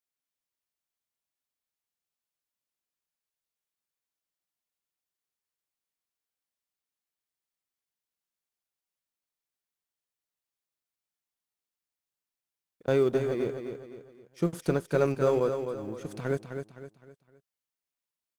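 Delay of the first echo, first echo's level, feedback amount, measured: 257 ms, -7.5 dB, 39%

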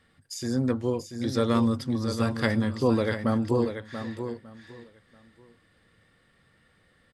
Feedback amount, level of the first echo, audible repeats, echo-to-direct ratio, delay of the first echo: no regular repeats, -8.5 dB, 3, -8.5 dB, 686 ms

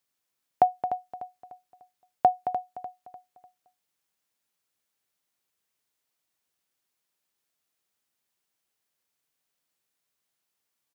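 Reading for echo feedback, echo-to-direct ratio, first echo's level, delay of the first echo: 37%, -10.5 dB, -11.0 dB, 298 ms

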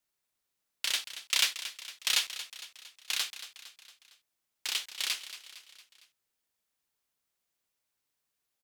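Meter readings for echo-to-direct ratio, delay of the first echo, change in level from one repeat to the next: -11.5 dB, 229 ms, -5.5 dB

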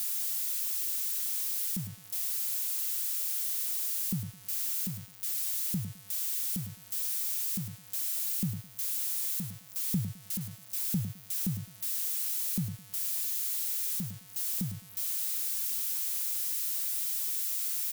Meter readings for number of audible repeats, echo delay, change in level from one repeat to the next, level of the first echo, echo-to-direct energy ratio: 2, 105 ms, -13.0 dB, -11.0 dB, -11.0 dB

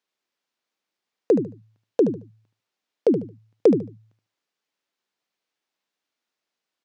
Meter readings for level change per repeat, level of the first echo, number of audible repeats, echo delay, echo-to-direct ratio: -13.0 dB, -9.5 dB, 2, 74 ms, -9.5 dB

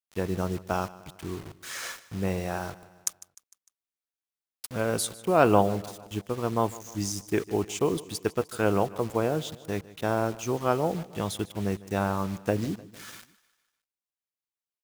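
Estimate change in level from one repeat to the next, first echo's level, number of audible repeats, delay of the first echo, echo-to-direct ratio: -5.5 dB, -19.0 dB, 3, 151 ms, -17.5 dB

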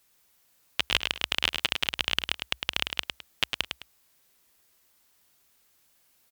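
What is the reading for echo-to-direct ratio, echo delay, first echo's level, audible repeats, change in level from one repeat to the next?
-5.5 dB, 105 ms, -6.0 dB, 2, -11.5 dB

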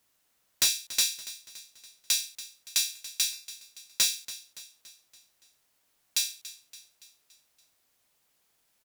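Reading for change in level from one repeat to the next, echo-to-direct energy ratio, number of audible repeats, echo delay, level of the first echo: -5.5 dB, -14.5 dB, 4, 284 ms, -16.0 dB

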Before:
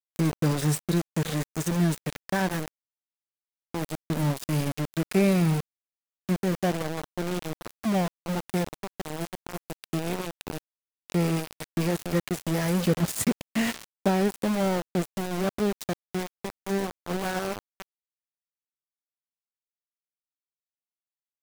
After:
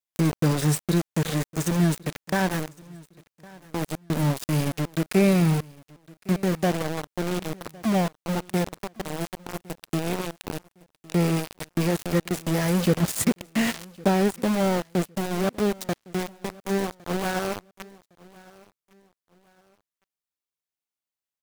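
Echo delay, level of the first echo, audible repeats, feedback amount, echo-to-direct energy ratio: 1109 ms, -23.0 dB, 2, 31%, -22.5 dB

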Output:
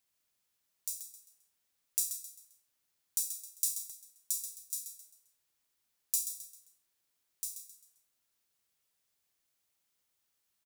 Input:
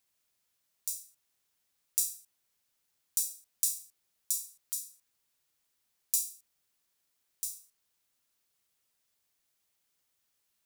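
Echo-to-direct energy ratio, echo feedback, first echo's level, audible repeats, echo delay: -9.0 dB, 37%, -9.5 dB, 3, 132 ms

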